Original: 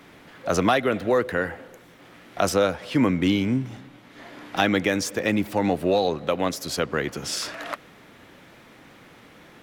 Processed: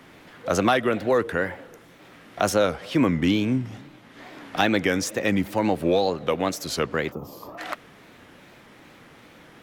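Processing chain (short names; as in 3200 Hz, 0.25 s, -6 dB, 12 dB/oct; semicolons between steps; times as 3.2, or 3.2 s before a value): spectral gain 7.12–7.58, 1300–12000 Hz -24 dB; wow and flutter 130 cents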